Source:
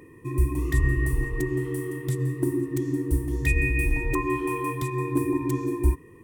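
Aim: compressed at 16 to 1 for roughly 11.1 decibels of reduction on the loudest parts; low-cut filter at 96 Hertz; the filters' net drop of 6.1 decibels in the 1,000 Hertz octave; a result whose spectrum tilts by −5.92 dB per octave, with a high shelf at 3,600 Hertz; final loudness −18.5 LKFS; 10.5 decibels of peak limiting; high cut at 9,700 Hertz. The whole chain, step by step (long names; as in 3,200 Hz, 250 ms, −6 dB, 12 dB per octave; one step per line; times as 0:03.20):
high-pass filter 96 Hz
low-pass filter 9,700 Hz
parametric band 1,000 Hz −5.5 dB
high-shelf EQ 3,600 Hz −9 dB
downward compressor 16 to 1, threshold −32 dBFS
level +23 dB
brickwall limiter −10.5 dBFS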